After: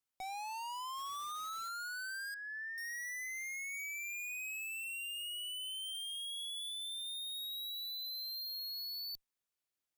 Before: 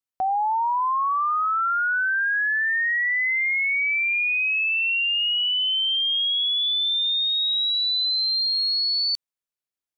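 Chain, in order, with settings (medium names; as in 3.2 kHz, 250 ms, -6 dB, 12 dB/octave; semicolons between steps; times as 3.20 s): 0.97–1.69 s: square wave that keeps the level; valve stage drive 43 dB, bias 0.3; 2.34–2.78 s: two resonant band-passes 670 Hz, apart 2.8 oct; trim +1 dB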